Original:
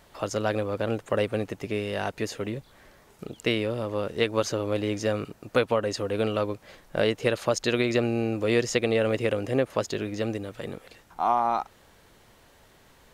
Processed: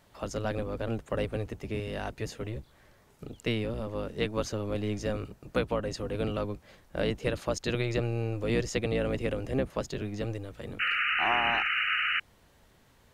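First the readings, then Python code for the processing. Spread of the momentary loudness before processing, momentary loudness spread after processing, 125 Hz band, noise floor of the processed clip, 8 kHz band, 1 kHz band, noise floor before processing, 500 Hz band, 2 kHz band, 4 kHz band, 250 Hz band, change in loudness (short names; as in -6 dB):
10 LU, 12 LU, -0.5 dB, -62 dBFS, -6.5 dB, -5.0 dB, -57 dBFS, -6.5 dB, +2.5 dB, -0.5 dB, -4.5 dB, -3.5 dB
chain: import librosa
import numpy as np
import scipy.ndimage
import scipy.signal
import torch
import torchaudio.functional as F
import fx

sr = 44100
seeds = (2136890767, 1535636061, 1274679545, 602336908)

y = fx.octave_divider(x, sr, octaves=1, level_db=2.0)
y = fx.spec_paint(y, sr, seeds[0], shape='noise', start_s=10.79, length_s=1.41, low_hz=1200.0, high_hz=3000.0, level_db=-22.0)
y = F.gain(torch.from_numpy(y), -6.5).numpy()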